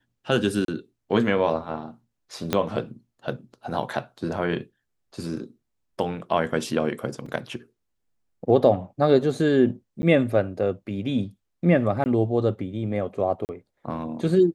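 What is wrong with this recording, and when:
0:00.65–0:00.68: drop-out 32 ms
0:02.53: click −7 dBFS
0:07.26: drop-out 3.6 ms
0:10.02–0:10.03: drop-out 10 ms
0:12.04–0:12.06: drop-out 19 ms
0:13.45–0:13.49: drop-out 39 ms

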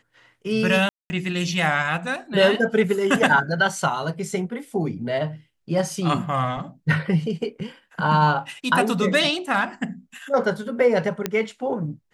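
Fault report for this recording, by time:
0:00.89–0:01.10: drop-out 210 ms
0:11.26: click −8 dBFS

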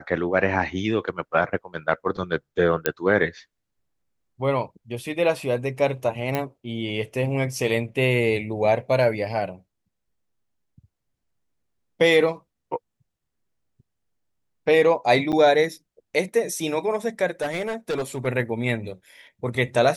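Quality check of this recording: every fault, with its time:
0:02.86: click −5 dBFS
0:06.35: click −11 dBFS
0:15.32–0:15.33: drop-out 8.6 ms
0:17.41–0:18.27: clipping −22 dBFS

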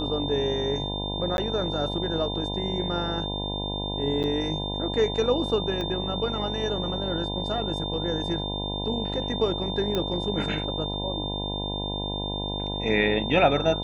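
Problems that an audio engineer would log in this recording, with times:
mains buzz 50 Hz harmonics 20 −32 dBFS
whistle 3,600 Hz −32 dBFS
0:01.37–0:01.38: drop-out 11 ms
0:04.23–0:04.24: drop-out 8.8 ms
0:05.81: click −19 dBFS
0:09.95: click −14 dBFS

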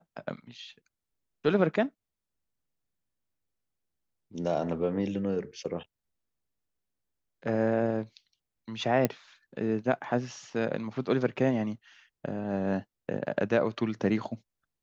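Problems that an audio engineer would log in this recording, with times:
0:09.05: click −11 dBFS

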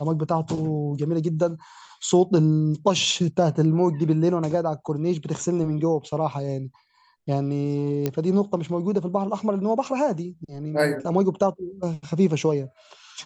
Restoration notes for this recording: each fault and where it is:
0:08.06: click −11 dBFS

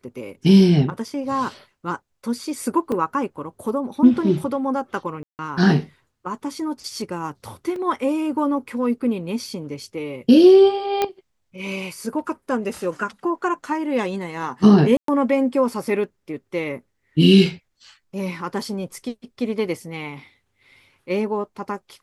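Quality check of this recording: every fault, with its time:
0:02.92: drop-out 2.7 ms
0:05.23–0:05.39: drop-out 159 ms
0:07.76: drop-out 2.6 ms
0:11.02: click −7 dBFS
0:14.97–0:15.08: drop-out 113 ms

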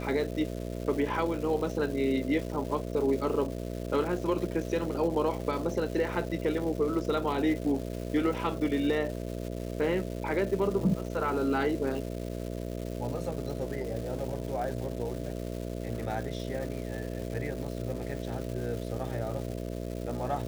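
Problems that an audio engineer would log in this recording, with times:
mains buzz 60 Hz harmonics 11 −36 dBFS
surface crackle 570 per second −38 dBFS

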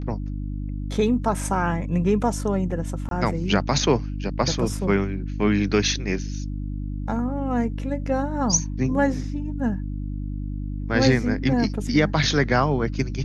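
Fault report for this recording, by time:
mains hum 50 Hz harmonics 6 −29 dBFS
0:03.09–0:03.11: drop-out 22 ms

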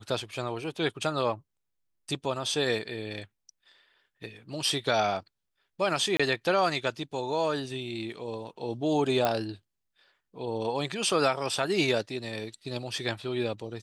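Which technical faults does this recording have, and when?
0:06.17–0:06.20: drop-out 25 ms
0:09.25: click −12 dBFS

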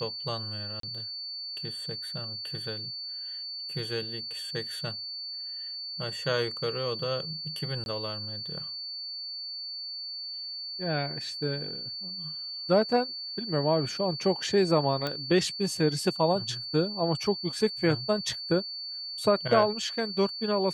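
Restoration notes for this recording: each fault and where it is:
whistle 4,500 Hz −35 dBFS
0:00.80–0:00.83: drop-out 33 ms
0:07.84–0:07.86: drop-out 21 ms
0:15.07: click −17 dBFS

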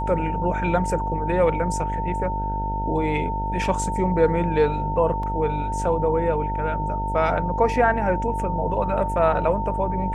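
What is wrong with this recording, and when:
mains buzz 50 Hz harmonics 16 −28 dBFS
whistle 900 Hz −26 dBFS
0:05.23: drop-out 3 ms

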